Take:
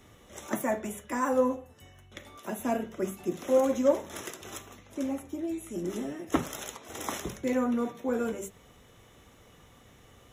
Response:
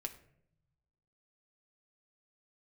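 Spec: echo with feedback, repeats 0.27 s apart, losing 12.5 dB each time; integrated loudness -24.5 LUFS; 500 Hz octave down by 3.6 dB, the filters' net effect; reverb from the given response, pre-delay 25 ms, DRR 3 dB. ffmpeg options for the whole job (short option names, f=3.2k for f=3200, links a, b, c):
-filter_complex "[0:a]equalizer=f=500:t=o:g=-4,aecho=1:1:270|540|810:0.237|0.0569|0.0137,asplit=2[a][b];[1:a]atrim=start_sample=2205,adelay=25[c];[b][c]afir=irnorm=-1:irlink=0,volume=-1dB[d];[a][d]amix=inputs=2:normalize=0,volume=6.5dB"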